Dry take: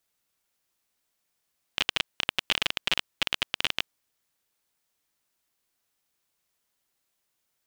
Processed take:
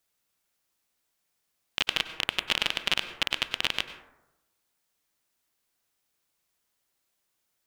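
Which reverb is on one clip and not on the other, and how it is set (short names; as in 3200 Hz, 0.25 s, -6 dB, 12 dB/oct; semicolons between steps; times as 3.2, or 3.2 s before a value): plate-style reverb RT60 0.93 s, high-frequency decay 0.35×, pre-delay 85 ms, DRR 10.5 dB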